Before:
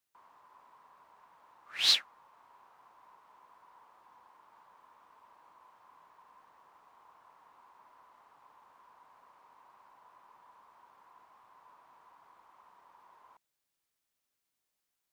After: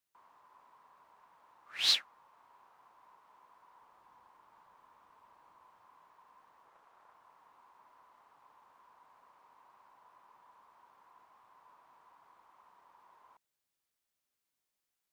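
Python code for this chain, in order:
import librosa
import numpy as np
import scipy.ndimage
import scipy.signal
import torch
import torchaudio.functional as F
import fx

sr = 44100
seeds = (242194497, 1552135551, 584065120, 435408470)

y = fx.low_shelf(x, sr, hz=140.0, db=8.0, at=(3.82, 5.86))
y = fx.doppler_dist(y, sr, depth_ms=0.31, at=(6.65, 7.14))
y = y * librosa.db_to_amplitude(-2.5)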